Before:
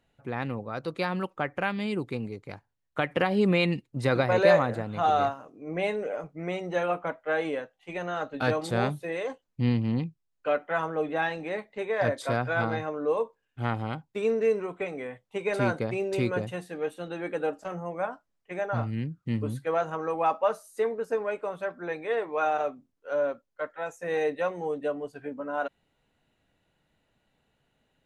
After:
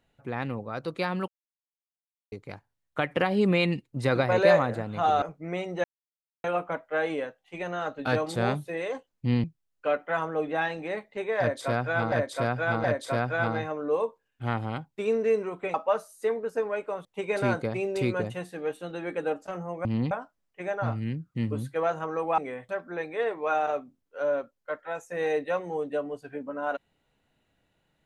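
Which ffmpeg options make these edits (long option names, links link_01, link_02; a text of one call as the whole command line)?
ffmpeg -i in.wav -filter_complex "[0:a]asplit=14[link_01][link_02][link_03][link_04][link_05][link_06][link_07][link_08][link_09][link_10][link_11][link_12][link_13][link_14];[link_01]atrim=end=1.28,asetpts=PTS-STARTPTS,afade=type=out:start_time=1.276:duration=0.004:curve=hsin[link_15];[link_02]atrim=start=1.28:end=2.32,asetpts=PTS-STARTPTS,volume=0[link_16];[link_03]atrim=start=2.32:end=5.222,asetpts=PTS-STARTPTS,afade=type=in:duration=0.004:curve=hsin[link_17];[link_04]atrim=start=6.168:end=6.79,asetpts=PTS-STARTPTS,afade=type=out:start_time=0.618:duration=0.004:curve=hsin,apad=pad_dur=0.6[link_18];[link_05]atrim=start=6.79:end=9.792,asetpts=PTS-STARTPTS,afade=type=in:duration=0.004:curve=hsin[link_19];[link_06]atrim=start=10.048:end=12.732[link_20];[link_07]atrim=start=12.008:end=12.732[link_21];[link_08]atrim=start=12.008:end=14.912[link_22];[link_09]atrim=start=20.288:end=21.602[link_23];[link_10]atrim=start=15.218:end=18.022[link_24];[link_11]atrim=start=9.788:end=10.052[link_25];[link_12]atrim=start=18.018:end=20.292[link_26];[link_13]atrim=start=14.908:end=15.222[link_27];[link_14]atrim=start=21.598[link_28];[link_15][link_16][link_17]concat=n=3:v=0:a=1[link_29];[link_18][link_19]concat=n=2:v=0:a=1[link_30];[link_29][link_30]acrossfade=duration=0.004:curve1=hsin:curve2=hsin[link_31];[link_31][link_20]acrossfade=duration=0.004:curve1=hsin:curve2=hsin[link_32];[link_32][link_21]acrossfade=duration=0.004:curve1=hsin:curve2=hsin[link_33];[link_33][link_22]acrossfade=duration=0.004:curve1=hsin:curve2=hsin[link_34];[link_34][link_23]acrossfade=duration=0.004:curve1=hsin:curve2=hsin[link_35];[link_35][link_24]acrossfade=duration=0.004:curve1=hsin:curve2=hsin[link_36];[link_36][link_25]acrossfade=duration=0.004:curve1=hsin:curve2=hsin[link_37];[link_37][link_26]acrossfade=duration=0.004:curve1=hsin:curve2=hsin[link_38];[link_38][link_27]acrossfade=duration=0.004:curve1=hsin:curve2=hsin[link_39];[link_39][link_28]acrossfade=duration=0.004:curve1=hsin:curve2=hsin" out.wav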